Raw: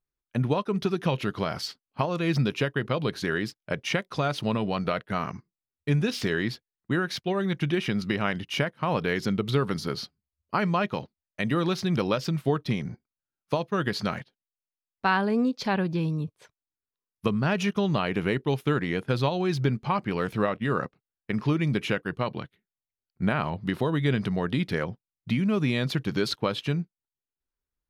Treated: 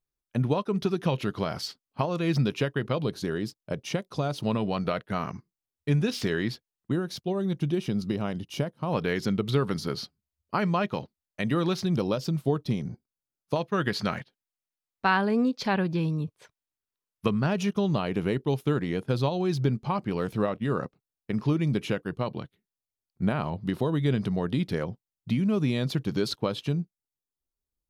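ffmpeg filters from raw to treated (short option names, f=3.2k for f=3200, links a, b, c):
-af "asetnsamples=n=441:p=0,asendcmd='3.05 equalizer g -11.5;4.42 equalizer g -3.5;6.92 equalizer g -15;8.93 equalizer g -3;11.86 equalizer g -10.5;13.56 equalizer g 0.5;17.46 equalizer g -7.5;26.69 equalizer g -13.5',equalizer=f=1.9k:t=o:w=1.6:g=-4"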